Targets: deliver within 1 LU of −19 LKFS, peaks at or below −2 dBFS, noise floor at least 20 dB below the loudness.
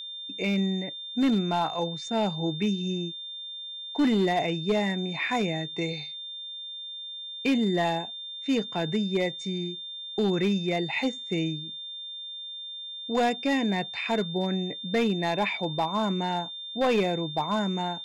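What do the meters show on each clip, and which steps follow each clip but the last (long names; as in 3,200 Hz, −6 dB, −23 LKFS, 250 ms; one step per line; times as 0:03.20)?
share of clipped samples 0.8%; peaks flattened at −18.5 dBFS; interfering tone 3,600 Hz; level of the tone −36 dBFS; integrated loudness −28.5 LKFS; sample peak −18.5 dBFS; target loudness −19.0 LKFS
→ clipped peaks rebuilt −18.5 dBFS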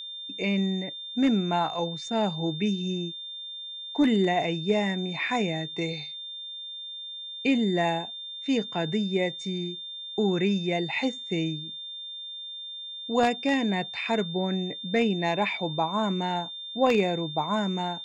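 share of clipped samples 0.0%; interfering tone 3,600 Hz; level of the tone −36 dBFS
→ notch filter 3,600 Hz, Q 30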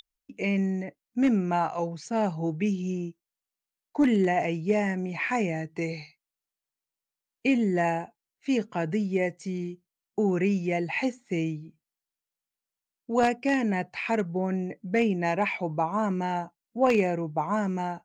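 interfering tone none found; integrated loudness −27.5 LKFS; sample peak −9.5 dBFS; target loudness −19.0 LKFS
→ level +8.5 dB
brickwall limiter −2 dBFS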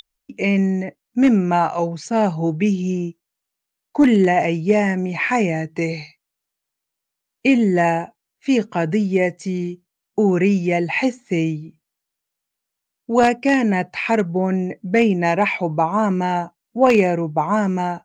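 integrated loudness −19.0 LKFS; sample peak −2.0 dBFS; background noise floor −82 dBFS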